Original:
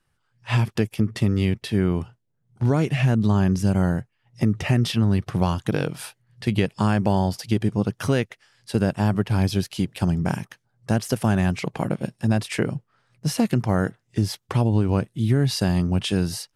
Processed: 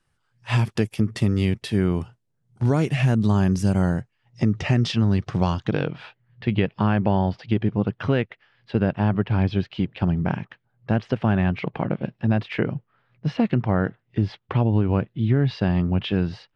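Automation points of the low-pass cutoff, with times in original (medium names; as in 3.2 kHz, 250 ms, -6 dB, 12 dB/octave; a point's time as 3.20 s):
low-pass 24 dB/octave
3.64 s 11 kHz
4.43 s 6.6 kHz
5.46 s 6.6 kHz
5.94 s 3.3 kHz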